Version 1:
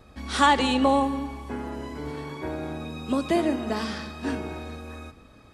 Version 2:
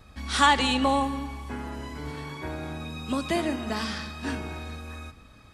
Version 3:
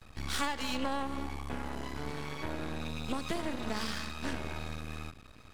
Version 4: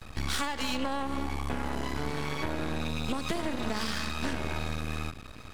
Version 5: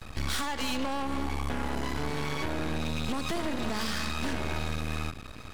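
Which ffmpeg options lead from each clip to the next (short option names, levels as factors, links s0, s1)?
-af "equalizer=f=420:t=o:w=2.1:g=-8,volume=1.33"
-af "acompressor=threshold=0.0355:ratio=5,aeval=exprs='max(val(0),0)':c=same,volume=1.19"
-af "acompressor=threshold=0.0178:ratio=4,volume=2.66"
-af "asoftclip=type=hard:threshold=0.0562,volume=1.26"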